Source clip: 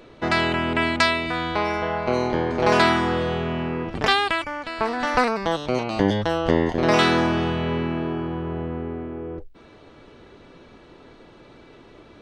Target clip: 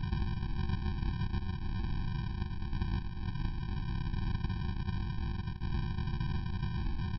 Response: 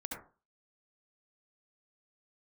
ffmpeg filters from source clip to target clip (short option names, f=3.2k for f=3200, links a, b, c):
-af "aeval=exprs='val(0)+0.5*0.0398*sgn(val(0))':c=same,acompressor=mode=upward:threshold=-30dB:ratio=2.5,aeval=exprs='val(0)+0.00251*(sin(2*PI*50*n/s)+sin(2*PI*2*50*n/s)/2+sin(2*PI*3*50*n/s)/3+sin(2*PI*4*50*n/s)/4+sin(2*PI*5*50*n/s)/5)':c=same,lowpass=f=1.5k:w=0.5412,lowpass=f=1.5k:w=1.3066,flanger=delay=0.5:depth=7.8:regen=-17:speed=0.41:shape=sinusoidal,afftfilt=real='re*lt(hypot(re,im),0.1)':imag='im*lt(hypot(re,im),0.1)':win_size=1024:overlap=0.75,aemphasis=mode=reproduction:type=50fm,bandreject=f=60:t=h:w=6,bandreject=f=120:t=h:w=6,bandreject=f=180:t=h:w=6,aecho=1:1:83:0.075,aresample=11025,acrusher=samples=39:mix=1:aa=0.000001,aresample=44100,atempo=1.7,afftfilt=real='re*eq(mod(floor(b*sr/1024/370),2),0)':imag='im*eq(mod(floor(b*sr/1024/370),2),0)':win_size=1024:overlap=0.75,volume=5.5dB"